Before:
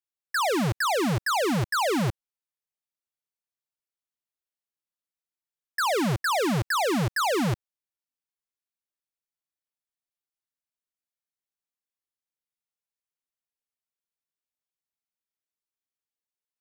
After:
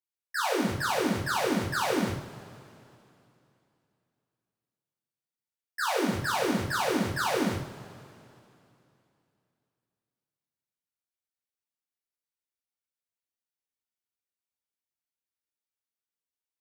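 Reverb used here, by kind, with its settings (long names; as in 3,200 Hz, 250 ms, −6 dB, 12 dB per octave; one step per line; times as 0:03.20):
coupled-rooms reverb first 0.44 s, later 2.9 s, from −20 dB, DRR −6 dB
level −10 dB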